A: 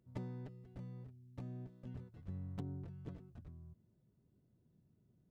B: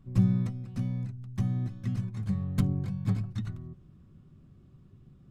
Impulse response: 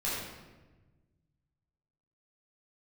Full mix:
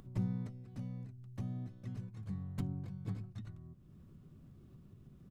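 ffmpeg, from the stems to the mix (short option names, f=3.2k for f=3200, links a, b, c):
-filter_complex "[0:a]highpass=f=110:w=0.5412,highpass=f=110:w=1.3066,volume=-2dB[a];[1:a]adelay=0.4,volume=-12.5dB[b];[a][b]amix=inputs=2:normalize=0,acompressor=mode=upward:threshold=-46dB:ratio=2.5"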